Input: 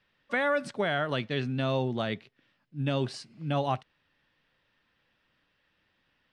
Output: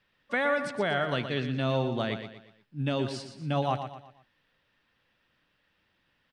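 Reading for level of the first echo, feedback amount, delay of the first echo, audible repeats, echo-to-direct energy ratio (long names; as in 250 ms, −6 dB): −9.0 dB, 40%, 119 ms, 4, −8.0 dB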